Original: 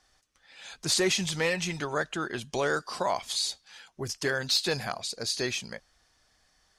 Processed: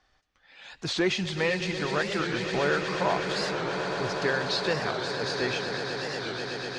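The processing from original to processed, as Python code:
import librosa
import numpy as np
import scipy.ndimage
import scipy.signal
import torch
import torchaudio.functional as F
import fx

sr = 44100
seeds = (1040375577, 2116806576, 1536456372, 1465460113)

y = scipy.signal.sosfilt(scipy.signal.butter(2, 3500.0, 'lowpass', fs=sr, output='sos'), x)
y = fx.echo_swell(y, sr, ms=122, loudest=8, wet_db=-12.0)
y = fx.record_warp(y, sr, rpm=45.0, depth_cents=160.0)
y = F.gain(torch.from_numpy(y), 1.0).numpy()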